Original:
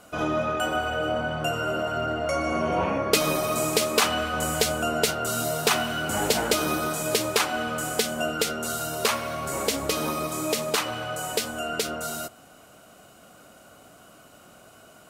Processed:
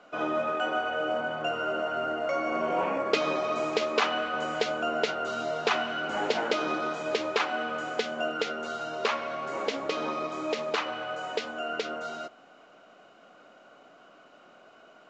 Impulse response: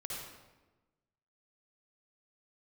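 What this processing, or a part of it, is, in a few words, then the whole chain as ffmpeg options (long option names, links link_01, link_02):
telephone: -af "highpass=290,lowpass=3100,volume=-2dB" -ar 16000 -c:a pcm_mulaw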